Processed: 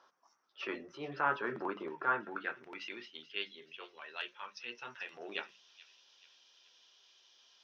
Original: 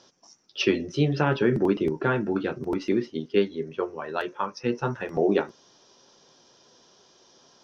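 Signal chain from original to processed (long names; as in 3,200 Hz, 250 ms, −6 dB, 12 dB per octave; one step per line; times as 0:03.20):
transient designer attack −7 dB, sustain 0 dB
band-pass filter sweep 1,200 Hz → 2,900 Hz, 0:02.14–0:02.95
mains-hum notches 50/100/150/200 Hz
on a send: delay with a high-pass on its return 432 ms, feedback 45%, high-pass 3,200 Hz, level −13 dB
on the sum: level +1.5 dB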